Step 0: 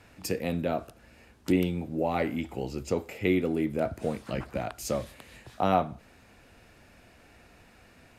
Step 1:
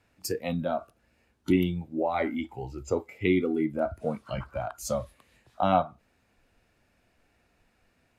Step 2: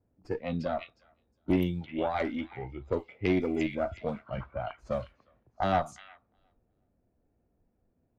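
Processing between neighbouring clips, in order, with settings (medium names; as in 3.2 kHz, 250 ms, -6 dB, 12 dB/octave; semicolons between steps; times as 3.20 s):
spectral noise reduction 14 dB; trim +1.5 dB
valve stage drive 17 dB, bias 0.55; repeats whose band climbs or falls 359 ms, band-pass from 2.9 kHz, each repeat 0.7 oct, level -2 dB; level-controlled noise filter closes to 490 Hz, open at -25 dBFS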